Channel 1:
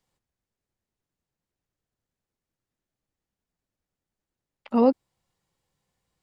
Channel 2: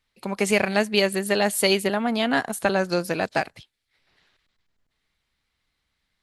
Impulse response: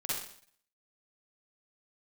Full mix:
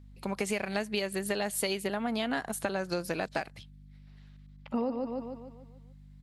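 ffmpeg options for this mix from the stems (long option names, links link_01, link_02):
-filter_complex "[0:a]aeval=exprs='val(0)+0.00447*(sin(2*PI*50*n/s)+sin(2*PI*2*50*n/s)/2+sin(2*PI*3*50*n/s)/3+sin(2*PI*4*50*n/s)/4+sin(2*PI*5*50*n/s)/5)':channel_layout=same,volume=-4dB,asplit=3[link_01][link_02][link_03];[link_02]volume=-19.5dB[link_04];[link_03]volume=-6dB[link_05];[1:a]volume=-4dB[link_06];[2:a]atrim=start_sample=2205[link_07];[link_04][link_07]afir=irnorm=-1:irlink=0[link_08];[link_05]aecho=0:1:147|294|441|588|735|882|1029:1|0.47|0.221|0.104|0.0488|0.0229|0.0108[link_09];[link_01][link_06][link_08][link_09]amix=inputs=4:normalize=0,acompressor=threshold=-28dB:ratio=6"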